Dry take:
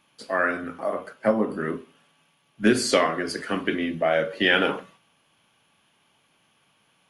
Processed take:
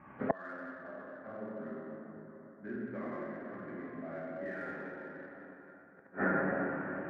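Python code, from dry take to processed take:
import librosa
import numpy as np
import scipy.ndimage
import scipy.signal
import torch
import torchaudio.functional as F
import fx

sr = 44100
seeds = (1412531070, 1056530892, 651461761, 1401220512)

p1 = scipy.signal.sosfilt(scipy.signal.butter(8, 2000.0, 'lowpass', fs=sr, output='sos'), x)
p2 = p1 + fx.echo_single(p1, sr, ms=665, db=-18.0, dry=0)
p3 = fx.rev_plate(p2, sr, seeds[0], rt60_s=3.8, hf_ratio=0.65, predelay_ms=0, drr_db=-8.5)
p4 = 10.0 ** (-19.5 / 20.0) * np.tanh(p3 / 10.0 ** (-19.5 / 20.0))
p5 = p3 + (p4 * librosa.db_to_amplitude(-11.0))
p6 = fx.gate_flip(p5, sr, shuts_db=-22.0, range_db=-35)
p7 = scipy.signal.sosfilt(scipy.signal.butter(2, 85.0, 'highpass', fs=sr, output='sos'), p6)
p8 = fx.low_shelf(p7, sr, hz=150.0, db=11.0)
p9 = fx.notch(p8, sr, hz=470.0, q=12.0)
y = p9 * librosa.db_to_amplitude(5.5)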